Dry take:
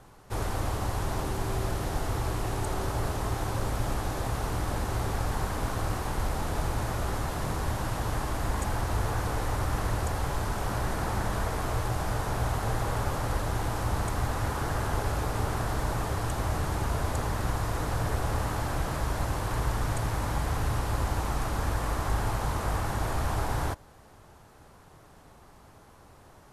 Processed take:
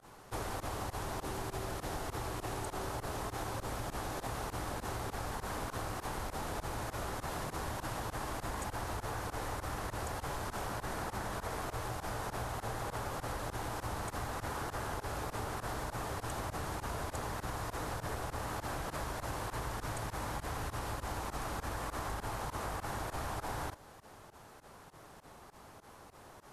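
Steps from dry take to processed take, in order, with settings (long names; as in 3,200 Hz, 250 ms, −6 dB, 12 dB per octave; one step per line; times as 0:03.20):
fake sidechain pumping 100 BPM, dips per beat 2, −24 dB, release 69 ms
low-shelf EQ 170 Hz −8.5 dB
downward compressor, threshold −37 dBFS, peak gain reduction 9.5 dB
level +1.5 dB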